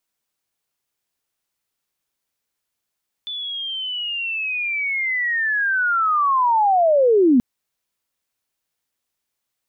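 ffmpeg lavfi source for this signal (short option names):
-f lavfi -i "aevalsrc='pow(10,(-26+15.5*t/4.13)/20)*sin(2*PI*(3500*t-3270*t*t/(2*4.13)))':d=4.13:s=44100"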